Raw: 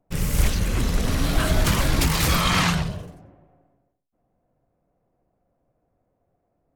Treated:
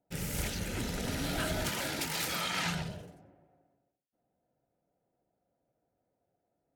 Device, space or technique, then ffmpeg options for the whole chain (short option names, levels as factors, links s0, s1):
PA system with an anti-feedback notch: -filter_complex "[0:a]highpass=f=170:p=1,asuperstop=centerf=1100:order=4:qfactor=5.7,alimiter=limit=0.188:level=0:latency=1:release=187,asettb=1/sr,asplit=3[s0][s1][s2];[s0]atrim=end=1.694[s3];[s1]atrim=start=1.69:end=2.66,asetpts=PTS-STARTPTS,afade=t=in:d=0.004:c=qsin,afade=t=out:st=0.966:d=0.004:c=qsin,highpass=f=280:p=1[s4];[s2]atrim=start=2.656[s5];[s3][s4]acrossfade=d=0.004:c1=hsin:c2=qsin[s6];[s6][s5]acrossfade=d=0.004:c1=qsin:c2=hsin,volume=0.422"